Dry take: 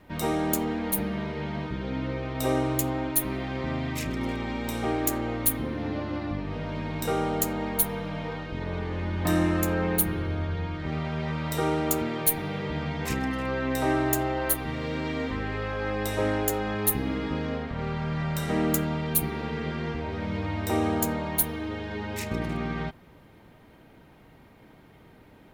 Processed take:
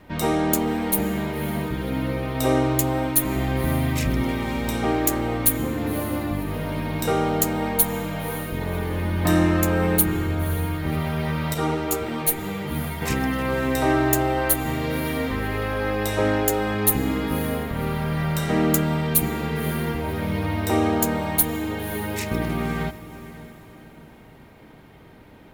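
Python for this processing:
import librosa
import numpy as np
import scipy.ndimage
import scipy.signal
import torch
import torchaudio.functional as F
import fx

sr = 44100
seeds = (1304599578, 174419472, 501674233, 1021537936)

y = fx.low_shelf(x, sr, hz=110.0, db=9.5, at=(3.36, 4.22))
y = fx.echo_diffused(y, sr, ms=546, feedback_pct=40, wet_db=-15.0)
y = fx.ensemble(y, sr, at=(11.54, 13.02))
y = y * 10.0 ** (5.0 / 20.0)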